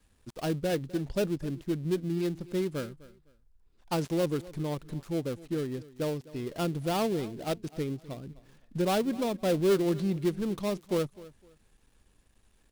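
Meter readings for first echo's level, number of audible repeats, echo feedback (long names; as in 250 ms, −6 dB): −19.5 dB, 2, 25%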